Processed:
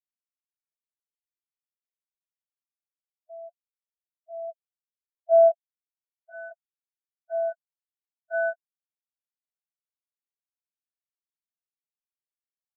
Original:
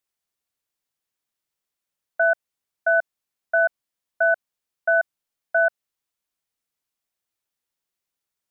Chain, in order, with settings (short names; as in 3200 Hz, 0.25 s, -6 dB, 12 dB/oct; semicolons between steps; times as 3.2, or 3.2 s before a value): plain phase-vocoder stretch 1.5×; low-pass sweep 410 Hz -> 1100 Hz, 3.4–7.11; spectral expander 2.5:1